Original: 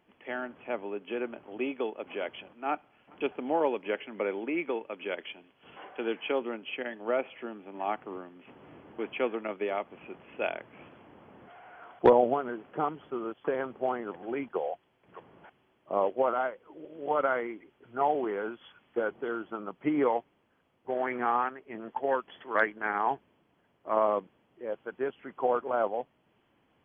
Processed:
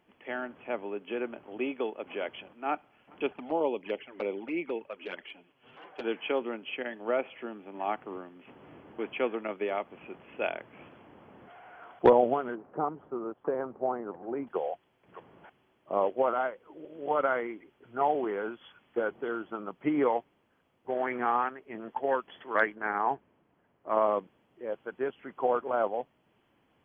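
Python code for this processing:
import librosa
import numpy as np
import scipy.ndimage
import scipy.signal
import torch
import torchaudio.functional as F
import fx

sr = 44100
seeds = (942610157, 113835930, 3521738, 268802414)

y = fx.env_flanger(x, sr, rest_ms=9.9, full_db=-26.5, at=(3.32, 6.03), fade=0.02)
y = fx.cheby1_lowpass(y, sr, hz=1000.0, order=2, at=(12.55, 14.47))
y = fx.lowpass(y, sr, hz=2200.0, slope=12, at=(22.75, 23.9))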